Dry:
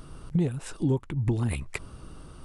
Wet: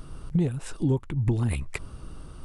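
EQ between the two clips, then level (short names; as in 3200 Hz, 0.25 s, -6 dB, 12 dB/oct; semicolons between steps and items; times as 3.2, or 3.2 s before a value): low shelf 83 Hz +6 dB; 0.0 dB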